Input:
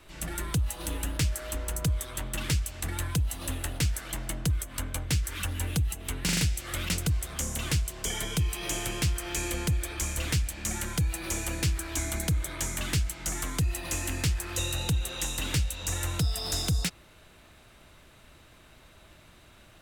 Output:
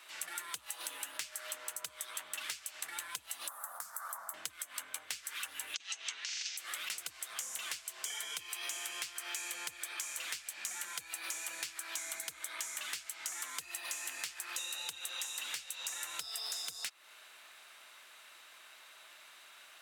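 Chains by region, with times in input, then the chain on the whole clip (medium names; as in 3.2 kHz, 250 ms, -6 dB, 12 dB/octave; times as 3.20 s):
3.48–4.34 s: high-pass 190 Hz 24 dB/octave + compression 3:1, threshold -35 dBFS + FFT filter 190 Hz 0 dB, 350 Hz -27 dB, 500 Hz -4 dB, 1.2 kHz +9 dB, 2.7 kHz -28 dB, 5.2 kHz -12 dB, 14 kHz +5 dB
5.74–6.57 s: Chebyshev band-pass 150–6300 Hz, order 4 + compressor with a negative ratio -33 dBFS, ratio -0.5 + tilt EQ +4 dB/octave
whole clip: high-pass 1.1 kHz 12 dB/octave; compression, threshold -41 dBFS; trim +3 dB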